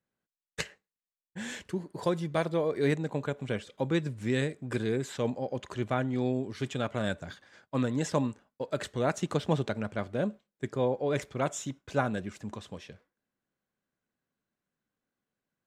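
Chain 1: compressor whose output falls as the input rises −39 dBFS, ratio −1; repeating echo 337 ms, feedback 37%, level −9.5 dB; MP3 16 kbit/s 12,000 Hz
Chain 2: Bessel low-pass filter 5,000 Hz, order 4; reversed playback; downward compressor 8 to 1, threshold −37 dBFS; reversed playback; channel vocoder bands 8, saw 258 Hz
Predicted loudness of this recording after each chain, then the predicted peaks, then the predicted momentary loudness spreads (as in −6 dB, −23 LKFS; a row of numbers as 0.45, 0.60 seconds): −39.5, −44.0 LKFS; −16.0, −28.0 dBFS; 7, 8 LU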